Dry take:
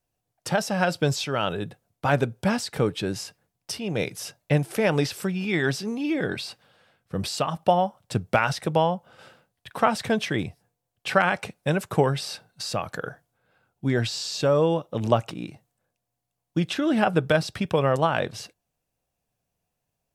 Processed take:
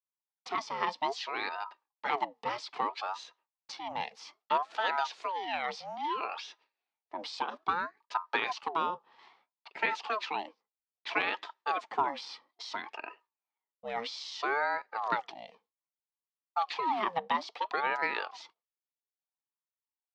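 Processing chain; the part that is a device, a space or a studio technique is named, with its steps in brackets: voice changer toy (ring modulator with a swept carrier 730 Hz, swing 55%, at 0.61 Hz; cabinet simulation 490–4900 Hz, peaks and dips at 560 Hz -7 dB, 890 Hz +5 dB, 1.5 kHz -5 dB); gate with hold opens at -51 dBFS; 2.92–4.02 s: peaking EQ 110 Hz +8.5 dB 1.1 oct; trim -4.5 dB

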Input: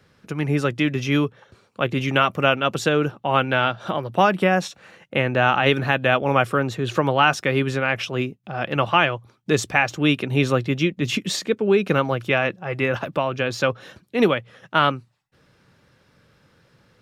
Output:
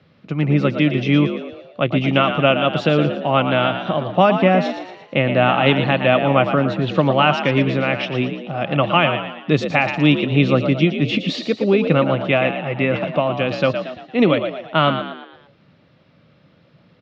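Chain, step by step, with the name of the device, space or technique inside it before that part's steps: frequency-shifting delay pedal into a guitar cabinet (frequency-shifting echo 115 ms, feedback 47%, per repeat +58 Hz, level -8.5 dB; cabinet simulation 81–4100 Hz, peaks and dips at 160 Hz +5 dB, 270 Hz +3 dB, 430 Hz -4 dB, 610 Hz +4 dB, 930 Hz -4 dB, 1.6 kHz -8 dB); trim +3 dB

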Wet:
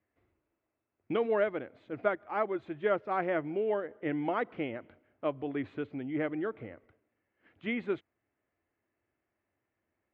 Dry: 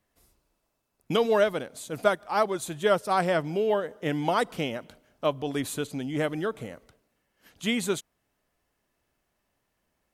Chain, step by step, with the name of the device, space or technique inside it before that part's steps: bass cabinet (cabinet simulation 80–2400 Hz, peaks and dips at 94 Hz +7 dB, 170 Hz -7 dB, 330 Hz +7 dB, 960 Hz -3 dB, 2.1 kHz +4 dB); trim -6.5 dB

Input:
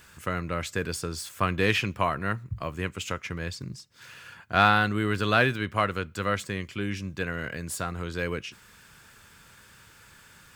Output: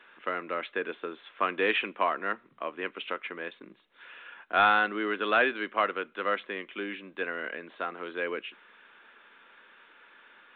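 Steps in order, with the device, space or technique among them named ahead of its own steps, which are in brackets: high-pass 240 Hz 24 dB/octave; telephone (band-pass 280–3500 Hz; saturation -11.5 dBFS, distortion -20 dB; µ-law 64 kbps 8 kHz)

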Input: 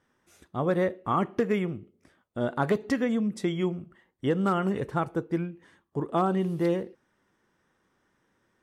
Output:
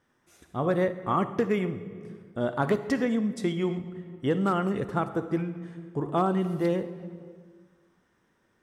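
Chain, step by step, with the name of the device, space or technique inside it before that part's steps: compressed reverb return (on a send at -4.5 dB: reverberation RT60 1.4 s, pre-delay 47 ms + compression 10:1, threshold -30 dBFS, peak gain reduction 12 dB)

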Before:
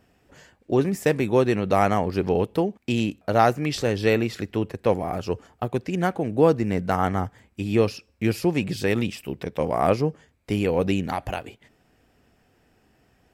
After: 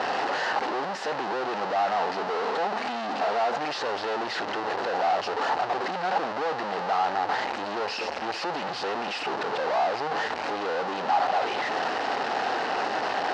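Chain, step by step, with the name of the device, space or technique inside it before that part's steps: 1.98–3.58 s: comb 4.4 ms, depth 55%; home computer beeper (one-bit comparator; cabinet simulation 520–4100 Hz, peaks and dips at 810 Hz +8 dB, 2.3 kHz -8 dB, 3.4 kHz -8 dB)

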